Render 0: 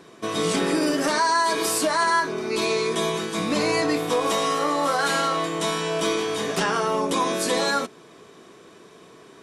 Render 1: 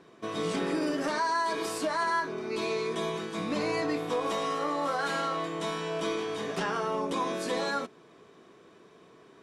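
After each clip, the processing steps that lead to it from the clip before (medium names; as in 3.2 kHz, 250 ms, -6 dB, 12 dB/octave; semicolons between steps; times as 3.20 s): low-pass 3.3 kHz 6 dB/octave; trim -7 dB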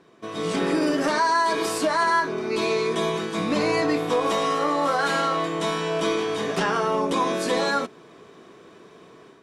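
level rider gain up to 7.5 dB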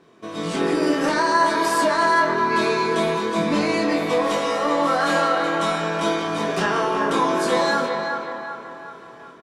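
doubling 24 ms -4.5 dB; band-passed feedback delay 374 ms, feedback 54%, band-pass 1.1 kHz, level -4 dB; reverberation RT60 2.3 s, pre-delay 107 ms, DRR 8 dB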